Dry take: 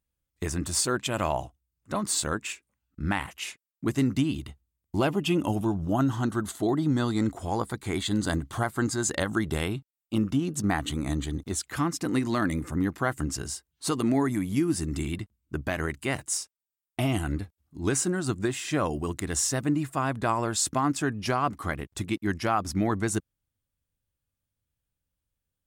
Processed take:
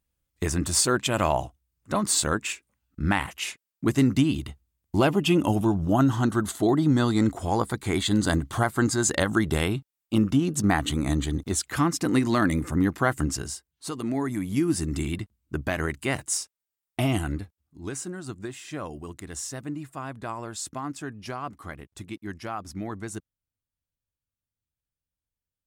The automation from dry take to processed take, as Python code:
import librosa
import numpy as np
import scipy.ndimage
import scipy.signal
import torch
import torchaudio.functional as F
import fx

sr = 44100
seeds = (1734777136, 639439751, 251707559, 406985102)

y = fx.gain(x, sr, db=fx.line((13.25, 4.0), (13.91, -6.0), (14.69, 2.0), (17.16, 2.0), (17.89, -8.0)))